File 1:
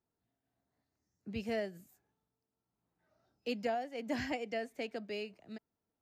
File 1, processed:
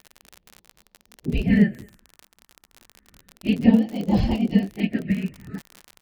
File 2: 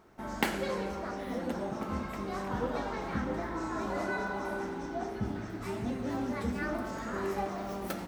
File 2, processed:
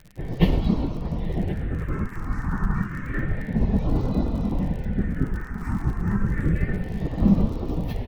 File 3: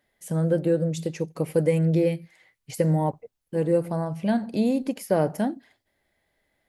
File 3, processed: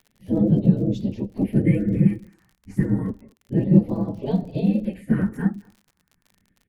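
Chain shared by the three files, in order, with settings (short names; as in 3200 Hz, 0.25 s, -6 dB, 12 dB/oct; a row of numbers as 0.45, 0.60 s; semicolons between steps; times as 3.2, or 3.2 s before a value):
phase scrambler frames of 50 ms; spectral gate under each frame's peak -10 dB weak; tilt -4 dB/oct; phaser stages 4, 0.3 Hz, lowest notch 550–1700 Hz; small resonant body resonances 200/1800 Hz, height 11 dB, ringing for 45 ms; crackle 44/s -45 dBFS; speakerphone echo 0.22 s, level -25 dB; normalise peaks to -3 dBFS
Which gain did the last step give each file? +17.0, +9.0, +3.5 dB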